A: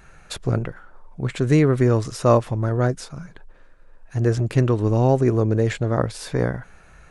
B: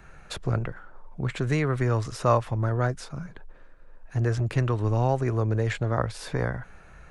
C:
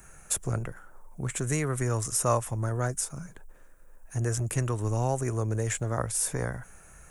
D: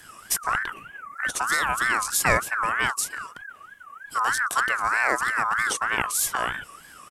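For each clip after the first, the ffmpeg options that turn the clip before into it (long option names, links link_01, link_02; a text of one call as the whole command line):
ffmpeg -i in.wav -filter_complex "[0:a]highshelf=frequency=3800:gain=-7.5,acrossover=split=110|680|4700[link_01][link_02][link_03][link_04];[link_02]acompressor=threshold=-30dB:ratio=4[link_05];[link_01][link_05][link_03][link_04]amix=inputs=4:normalize=0" out.wav
ffmpeg -i in.wav -af "aexciter=amount=6.5:drive=9.6:freq=6400,volume=-4dB" out.wav
ffmpeg -i in.wav -af "aresample=32000,aresample=44100,aeval=exprs='val(0)*sin(2*PI*1400*n/s+1400*0.2/3.2*sin(2*PI*3.2*n/s))':channel_layout=same,volume=7dB" out.wav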